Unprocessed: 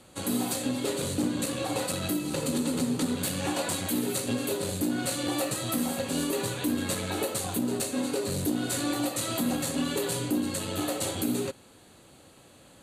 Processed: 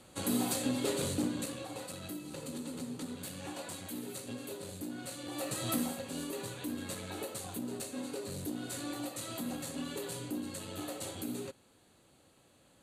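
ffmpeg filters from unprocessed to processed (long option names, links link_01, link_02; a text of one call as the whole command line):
ffmpeg -i in.wav -af "volume=7dB,afade=type=out:start_time=1.03:duration=0.65:silence=0.316228,afade=type=in:start_time=5.3:duration=0.42:silence=0.316228,afade=type=out:start_time=5.72:duration=0.27:silence=0.421697" out.wav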